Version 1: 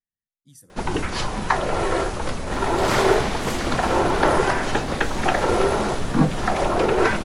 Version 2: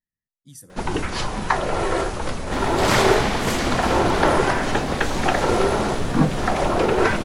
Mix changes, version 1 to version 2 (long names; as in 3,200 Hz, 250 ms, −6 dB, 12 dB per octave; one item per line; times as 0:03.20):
speech +6.0 dB
second sound +4.5 dB